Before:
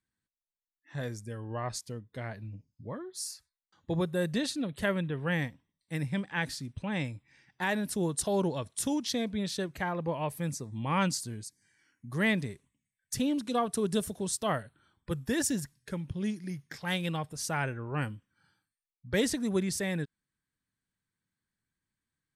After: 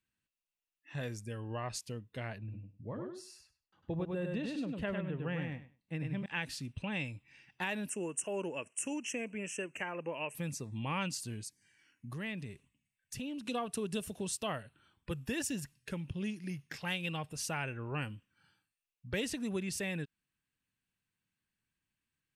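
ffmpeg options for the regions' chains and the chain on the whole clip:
-filter_complex "[0:a]asettb=1/sr,asplit=3[a][b][c];[a]atrim=end=2.384[d];[b]atrim=start=2.38:end=6.26,asetpts=PTS-STARTPTS,afade=t=in:d=0.004:c=qsin,afade=t=out:st=3.876:d=0.004:c=qsin,lowpass=f=1.1k:p=1,aecho=1:1:100|200|300:0.631|0.0946|0.0142,atrim=end_sample=171108[e];[c]atrim=start=6.256[f];[d][e]acrossfade=d=0.004:c1=hsin:c2=qsin[g];[g][f]acrossfade=d=0.004:c1=qsin:c2=hsin,asettb=1/sr,asplit=3[h][i][j];[h]atrim=end=7.894[k];[i]atrim=start=7.89:end=10.35,asetpts=PTS-STARTPTS,afade=t=in:d=0.004:c=qsin,afade=t=out:st=2.456:d=0.004:c=qsin,asuperstop=centerf=4100:order=8:qfactor=1.2,highpass=290,equalizer=f=760:t=q:w=4:g=-6,equalizer=f=1.1k:t=q:w=4:g=-3,equalizer=f=3k:t=q:w=4:g=8,equalizer=f=5.3k:t=q:w=4:g=4,equalizer=f=8.2k:t=q:w=4:g=6,lowpass=f=9.6k:w=0.5412,lowpass=f=9.6k:w=1.3066[l];[j]atrim=start=10.346[m];[k][l]acrossfade=d=0.004:c1=hsin:c2=qsin[n];[n][m]acrossfade=d=0.004:c1=qsin:c2=hsin,asettb=1/sr,asplit=3[o][p][q];[o]atrim=end=12.134[r];[p]atrim=start=12.13:end=13.46,asetpts=PTS-STARTPTS,afade=t=in:d=0.004:c=qsin,afade=t=out:st=1.326:d=0.004:c=qsin,bass=f=250:g=3,treble=f=4k:g=-1,acompressor=threshold=-45dB:ratio=2:attack=3.2:release=140:knee=1:detection=peak[s];[q]atrim=start=13.456[t];[r][s]acrossfade=d=0.004:c1=hsin:c2=qsin[u];[u][t]acrossfade=d=0.004:c1=qsin:c2=hsin,equalizer=f=2.7k:t=o:w=0.3:g=13,acompressor=threshold=-34dB:ratio=2.5,volume=-1.5dB"

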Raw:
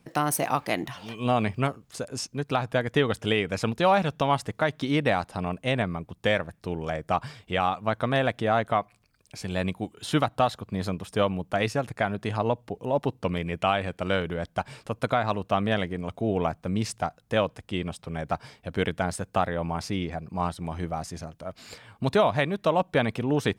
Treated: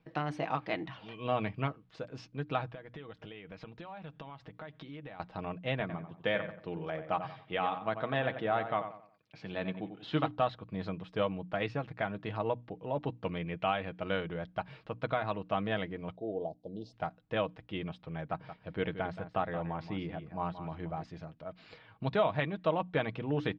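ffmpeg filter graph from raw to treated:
-filter_complex "[0:a]asettb=1/sr,asplit=3[a][b][c];[a]atrim=end=2.734[d];[b]atrim=start=2.73:end=5.2,asetpts=PTS-STARTPTS,afade=t=in:d=0.004:c=qsin,afade=t=out:st=2.466:d=0.004:c=qsin,lowpass=8.5k,acompressor=threshold=-35dB:ratio=12:attack=3.2:release=140:knee=1:detection=peak[e];[c]atrim=start=5.196[f];[d][e]acrossfade=d=0.004:c1=hsin:c2=qsin[g];[g][f]acrossfade=d=0.004:c1=qsin:c2=hsin,asettb=1/sr,asplit=3[h][i][j];[h]atrim=end=5.804[k];[i]atrim=start=5.8:end=10.31,asetpts=PTS-STARTPTS,afade=t=in:d=0.004:c=qsin,afade=t=out:st=4.506:d=0.004:c=qsin,highpass=120,lowpass=7.2k,asplit=2[l][m];[m]adelay=91,lowpass=f=2.4k:p=1,volume=-9dB,asplit=2[n][o];[o]adelay=91,lowpass=f=2.4k:p=1,volume=0.36,asplit=2[p][q];[q]adelay=91,lowpass=f=2.4k:p=1,volume=0.36,asplit=2[r][s];[s]adelay=91,lowpass=f=2.4k:p=1,volume=0.36[t];[l][n][p][r][t]amix=inputs=5:normalize=0,atrim=end_sample=198891[u];[j]atrim=start=10.306[v];[k][u]acrossfade=d=0.004:c1=hsin:c2=qsin[w];[w][v]acrossfade=d=0.004:c1=qsin:c2=hsin,asettb=1/sr,asplit=3[x][y][z];[x]atrim=end=16.164[aa];[y]atrim=start=16.16:end=16.93,asetpts=PTS-STARTPTS,afade=t=in:d=0.004:c=qsin,afade=t=out:st=0.766:d=0.004:c=qsin,asuperstop=centerf=1700:order=8:qfactor=0.51,bass=f=250:g=-12,treble=f=4k:g=-7[ab];[z]atrim=start=16.926[ac];[aa][ab]acrossfade=d=0.004:c1=hsin:c2=qsin[ad];[ad][ac]acrossfade=d=0.004:c1=qsin:c2=hsin,asettb=1/sr,asplit=3[ae][af][ag];[ae]atrim=end=18.234[ah];[af]atrim=start=18.23:end=21.03,asetpts=PTS-STARTPTS,afade=t=in:d=0.004:c=qsin,afade=t=out:st=2.796:d=0.004:c=qsin,lowpass=f=3.6k:p=1,aecho=1:1:176:0.266,atrim=end_sample=123480[ai];[ag]atrim=start=21.026[aj];[ah][ai]acrossfade=d=0.004:c1=hsin:c2=qsin[ak];[ak][aj]acrossfade=d=0.004:c1=qsin:c2=hsin,lowpass=f=3.8k:w=0.5412,lowpass=f=3.8k:w=1.3066,bandreject=f=60:t=h:w=6,bandreject=f=120:t=h:w=6,bandreject=f=180:t=h:w=6,bandreject=f=240:t=h:w=6,bandreject=f=300:t=h:w=6,aecho=1:1:6.3:0.41,volume=-8dB"

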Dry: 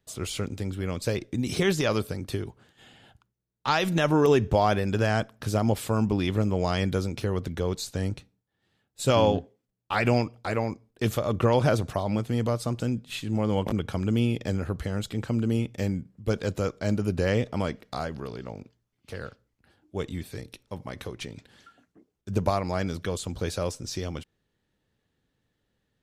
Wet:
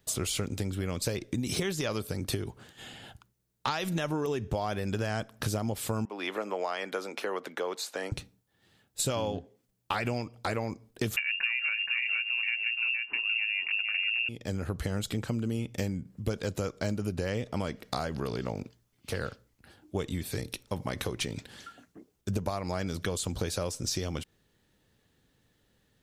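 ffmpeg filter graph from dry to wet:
-filter_complex "[0:a]asettb=1/sr,asplit=3[a][b][c];[a]atrim=end=6.054[d];[b]atrim=start=6.05:end=8.12,asetpts=PTS-STARTPTS,afade=t=in:d=0.004:c=qsin,afade=t=out:st=2.066:d=0.004:c=qsin,highpass=f=240:w=0.5412,highpass=f=240:w=1.3066,acrossover=split=530 2600:gain=0.178 1 0.224[e][f][g];[e][f][g]amix=inputs=3:normalize=0[h];[c]atrim=start=8.116[i];[d][h]acrossfade=d=0.004:c1=hsin:c2=qsin[j];[j][i]acrossfade=d=0.004:c1=qsin:c2=hsin,asettb=1/sr,asplit=3[k][l][m];[k]atrim=end=11.164[n];[l]atrim=start=11.16:end=14.29,asetpts=PTS-STARTPTS,afade=t=in:d=0.004:c=qsin,afade=t=out:st=3.126:d=0.004:c=qsin,aecho=1:1:472:0.596,atrim=end_sample=138033,lowpass=f=2.5k:t=q:w=0.5098,lowpass=f=2.5k:t=q:w=0.6013,lowpass=f=2.5k:t=q:w=0.9,lowpass=f=2.5k:t=q:w=2.563,afreqshift=-2900,tiltshelf=f=730:g=-8[o];[m]atrim=start=14.286[p];[n][o]acrossfade=d=0.004:c1=hsin:c2=qsin[q];[q][p]acrossfade=d=0.004:c1=qsin:c2=hsin,highshelf=f=5k:g=6.5,acompressor=threshold=-34dB:ratio=10,volume=6dB"

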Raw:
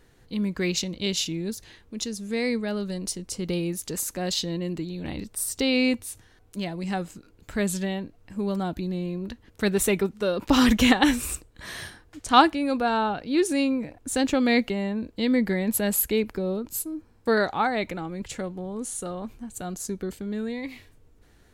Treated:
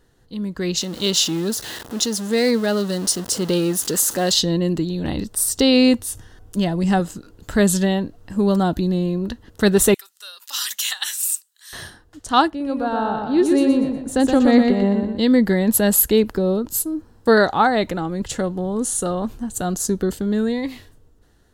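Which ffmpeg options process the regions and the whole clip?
-filter_complex "[0:a]asettb=1/sr,asplit=3[a][b][c];[a]atrim=end=0.814[d];[b]atrim=start=0.81:end=4.32,asetpts=PTS-STARTPTS,afade=t=in:d=0.004:c=qsin,afade=t=out:st=3.506:d=0.004:c=qsin,aeval=exprs='val(0)+0.5*0.015*sgn(val(0))':c=same,highpass=f=280:p=1[e];[c]atrim=start=4.316[f];[d][e]acrossfade=d=0.004:c1=hsin:c2=qsin[g];[g][f]acrossfade=d=0.004:c1=qsin:c2=hsin,asettb=1/sr,asplit=3[h][i][j];[h]atrim=end=6.084[k];[i]atrim=start=6.08:end=7,asetpts=PTS-STARTPTS,afade=t=in:d=0.004:c=qsin,afade=t=out:st=0.916:d=0.004:c=qsin,lowshelf=f=140:g=6.5,bandreject=f=4.1k:w=11[l];[j]atrim=start=6.996[m];[k][l]acrossfade=d=0.004:c1=hsin:c2=qsin[n];[n][m]acrossfade=d=0.004:c1=qsin:c2=hsin,asettb=1/sr,asplit=3[o][p][q];[o]atrim=end=9.944[r];[p]atrim=start=9.94:end=11.73,asetpts=PTS-STARTPTS,afade=t=in:d=0.004:c=qsin,afade=t=out:st=1.786:d=0.004:c=qsin,highpass=1.3k,aderivative[s];[q]atrim=start=11.726[t];[r][s]acrossfade=d=0.004:c1=hsin:c2=qsin[u];[u][t]acrossfade=d=0.004:c1=qsin:c2=hsin,asettb=1/sr,asplit=3[v][w][x];[v]atrim=end=12.484[y];[w]atrim=start=12.48:end=15.19,asetpts=PTS-STARTPTS,afade=t=in:d=0.004:c=qsin,afade=t=out:st=2.706:d=0.004:c=qsin,highshelf=f=2.2k:g=-10,aecho=1:1:121|242|363|484|605:0.596|0.232|0.0906|0.0353|0.0138,atrim=end_sample=119511[z];[x]atrim=start=15.186[aa];[y][z]acrossfade=d=0.004:c1=hsin:c2=qsin[ab];[ab][aa]acrossfade=d=0.004:c1=qsin:c2=hsin,equalizer=f=2.3k:w=5.5:g=-13,dynaudnorm=f=130:g=13:m=11.5dB,volume=-1dB"

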